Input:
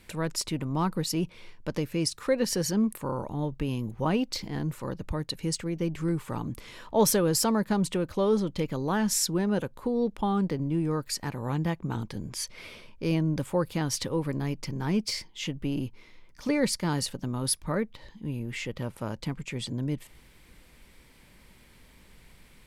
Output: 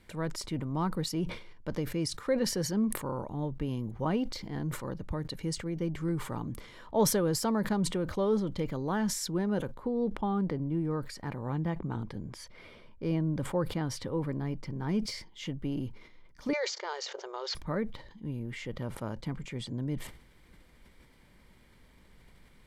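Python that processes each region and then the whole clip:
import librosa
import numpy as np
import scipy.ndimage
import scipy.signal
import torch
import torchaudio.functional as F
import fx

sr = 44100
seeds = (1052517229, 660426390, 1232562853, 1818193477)

y = fx.chain(x, sr, fx.high_shelf(hz=3400.0, db=-7.0),
    fx.notch(hz=6400.0, q=24.0), at=(9.74, 14.89))
y = fx.chain(y, sr, fx.resample_bad(factor=3, down='none', up='filtered'),
    fx.brickwall_highpass(low_hz=360.0),
    fx.band_squash(depth_pct=70), at=(16.53, 17.55))
y = fx.high_shelf(y, sr, hz=4000.0, db=-8.0)
y = fx.notch(y, sr, hz=2600.0, q=9.2)
y = fx.sustainer(y, sr, db_per_s=90.0)
y = y * 10.0 ** (-3.5 / 20.0)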